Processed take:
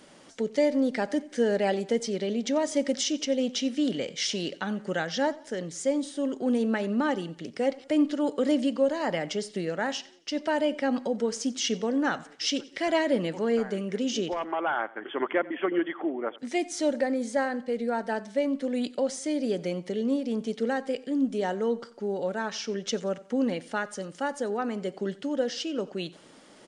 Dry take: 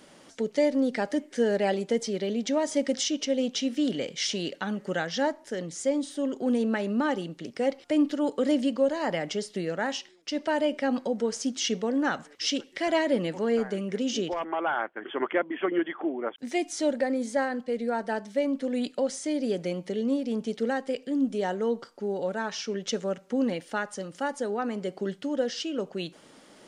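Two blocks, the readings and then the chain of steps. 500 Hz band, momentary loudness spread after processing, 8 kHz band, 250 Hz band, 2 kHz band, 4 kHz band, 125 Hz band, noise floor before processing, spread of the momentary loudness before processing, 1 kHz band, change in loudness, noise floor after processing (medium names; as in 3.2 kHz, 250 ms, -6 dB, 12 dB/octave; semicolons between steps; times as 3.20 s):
0.0 dB, 6 LU, 0.0 dB, 0.0 dB, 0.0 dB, 0.0 dB, 0.0 dB, -55 dBFS, 6 LU, 0.0 dB, 0.0 dB, -53 dBFS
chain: feedback delay 90 ms, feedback 41%, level -21 dB; resampled via 22.05 kHz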